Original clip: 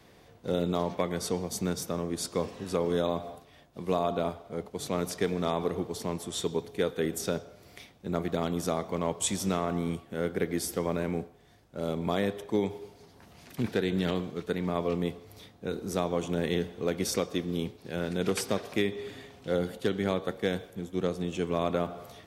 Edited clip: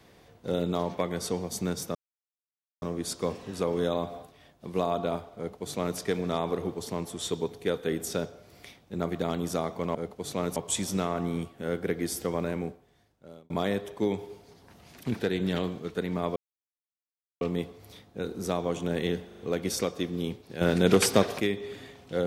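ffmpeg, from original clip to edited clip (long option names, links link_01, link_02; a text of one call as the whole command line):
ffmpeg -i in.wav -filter_complex "[0:a]asplit=11[link_01][link_02][link_03][link_04][link_05][link_06][link_07][link_08][link_09][link_10][link_11];[link_01]atrim=end=1.95,asetpts=PTS-STARTPTS,afade=type=out:start_time=1.946:duration=0.004:curve=hsin,apad=pad_dur=0.87[link_12];[link_02]atrim=start=1.95:end=9.082,asetpts=PTS-STARTPTS,afade=type=in:duration=0.004:curve=hsin[link_13];[link_03]atrim=start=4.498:end=5.112[link_14];[link_04]atrim=start=9.078:end=12.02,asetpts=PTS-STARTPTS,afade=type=out:start_time=1.922:duration=1.02[link_15];[link_05]atrim=start=12.02:end=14.88,asetpts=PTS-STARTPTS,afade=type=in:duration=0.004:curve=hsin,afade=type=out:start_time=2.856:duration=0.004:curve=hsin,apad=pad_dur=1.05[link_16];[link_06]atrim=start=14.88:end=16.782,asetpts=PTS-STARTPTS,afade=type=in:duration=0.004:curve=hsin[link_17];[link_07]atrim=start=16.738:end=16.782[link_18];[link_08]atrim=start=16.738:end=16.782[link_19];[link_09]atrim=start=16.738:end=17.962[link_20];[link_10]atrim=start=17.958:end=18.752,asetpts=PTS-STARTPTS,volume=8dB[link_21];[link_11]atrim=start=18.748[link_22];[link_12][link_13]concat=n=2:v=0:a=1[link_23];[link_23][link_14]acrossfade=duration=0.004:curve1=hsin:curve2=hsin[link_24];[link_15][link_16][link_17]concat=n=3:v=0:a=1[link_25];[link_24][link_25]acrossfade=duration=0.004:curve1=hsin:curve2=hsin[link_26];[link_26][link_18]acrossfade=duration=0.004:curve1=hsin:curve2=hsin[link_27];[link_27][link_19]acrossfade=duration=0.004:curve1=hsin:curve2=hsin[link_28];[link_28][link_20]acrossfade=duration=0.004:curve1=hsin:curve2=hsin[link_29];[link_29][link_21]acrossfade=duration=0.004:curve1=hsin:curve2=hsin[link_30];[link_30][link_22]acrossfade=duration=0.004:curve1=hsin:curve2=hsin" out.wav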